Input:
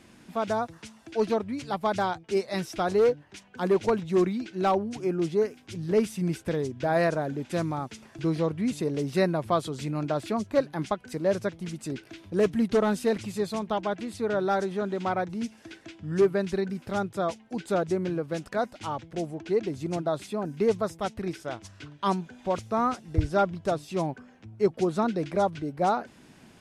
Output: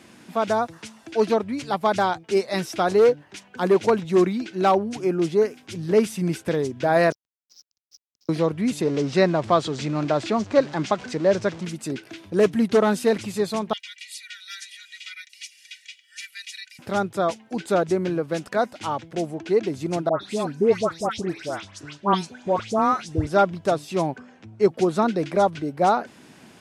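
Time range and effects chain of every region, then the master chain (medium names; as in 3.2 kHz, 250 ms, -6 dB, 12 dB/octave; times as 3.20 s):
7.12–8.29 s: Butterworth band-pass 5.4 kHz, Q 6.6 + hysteresis with a dead band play -52 dBFS
8.81–11.65 s: jump at every zero crossing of -40 dBFS + low-pass 7 kHz 24 dB/octave
13.73–16.79 s: steep high-pass 2 kHz 48 dB/octave + comb 2.1 ms, depth 92%
20.09–23.27 s: low-pass 8.3 kHz + treble shelf 5.9 kHz +4.5 dB + phase dispersion highs, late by 127 ms, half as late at 1.7 kHz
24.16–24.62 s: low-pass 9.1 kHz 24 dB/octave + upward compressor, threshold -55 dBFS
whole clip: high-pass 72 Hz; bass shelf 130 Hz -7.5 dB; trim +6 dB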